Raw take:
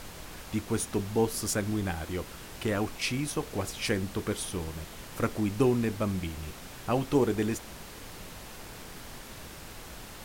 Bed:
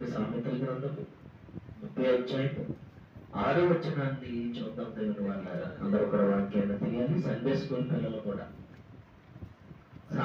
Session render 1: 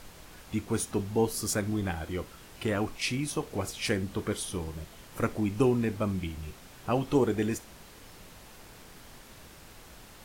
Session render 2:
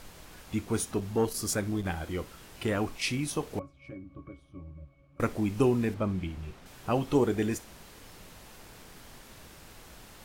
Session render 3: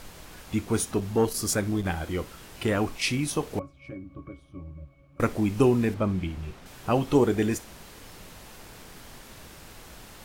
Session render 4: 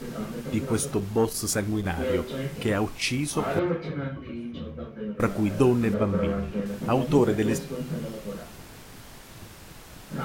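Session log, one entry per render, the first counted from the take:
noise reduction from a noise print 6 dB
0:00.94–0:01.86: saturating transformer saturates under 330 Hz; 0:03.59–0:05.20: resonances in every octave C#, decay 0.16 s; 0:05.94–0:06.66: low-pass filter 2,700 Hz 6 dB per octave
level +4 dB
mix in bed −1 dB

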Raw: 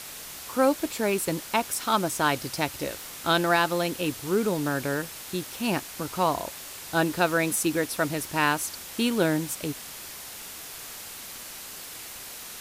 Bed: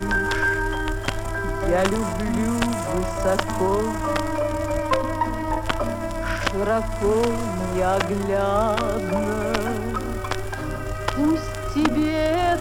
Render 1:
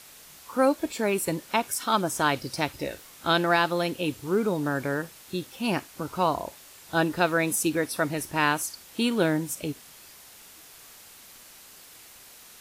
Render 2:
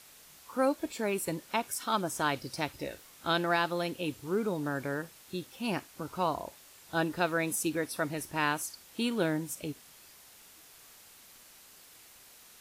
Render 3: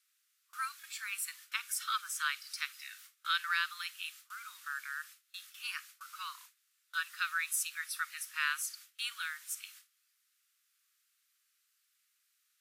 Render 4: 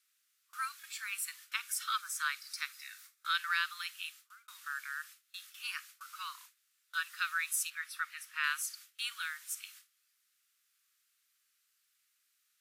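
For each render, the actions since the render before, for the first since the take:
noise reduction from a noise print 9 dB
level −6 dB
Butterworth high-pass 1,200 Hz 72 dB per octave; noise gate with hold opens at −42 dBFS
0:01.99–0:03.35: parametric band 3,000 Hz −7 dB 0.29 octaves; 0:04.02–0:04.48: fade out; 0:07.70–0:08.44: bass and treble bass +11 dB, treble −8 dB

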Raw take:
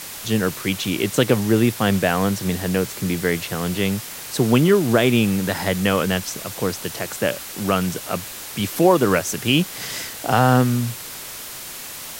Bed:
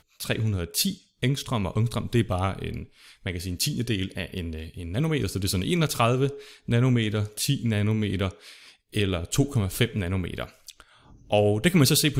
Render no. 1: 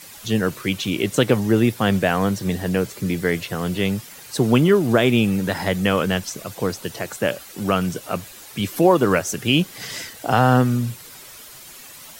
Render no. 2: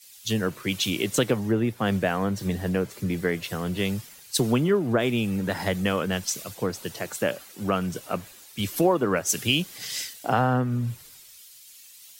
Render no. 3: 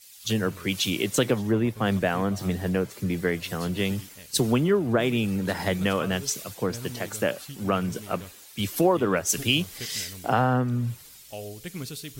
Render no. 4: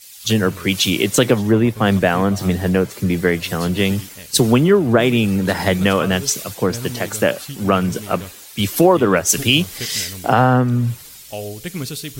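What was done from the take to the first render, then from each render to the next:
broadband denoise 10 dB, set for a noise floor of −35 dBFS
downward compressor 3 to 1, threshold −22 dBFS, peak gain reduction 10 dB; multiband upward and downward expander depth 100%
mix in bed −17 dB
level +9 dB; brickwall limiter −1 dBFS, peak gain reduction 2 dB

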